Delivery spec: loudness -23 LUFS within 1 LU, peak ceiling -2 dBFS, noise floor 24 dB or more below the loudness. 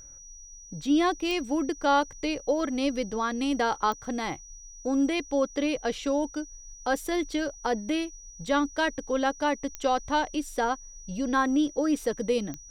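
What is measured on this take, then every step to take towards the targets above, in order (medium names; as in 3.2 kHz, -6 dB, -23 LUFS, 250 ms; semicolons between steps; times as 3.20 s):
clicks found 4; steady tone 5.8 kHz; tone level -46 dBFS; loudness -28.0 LUFS; peak level -11.5 dBFS; loudness target -23.0 LUFS
-> de-click; band-stop 5.8 kHz, Q 30; trim +5 dB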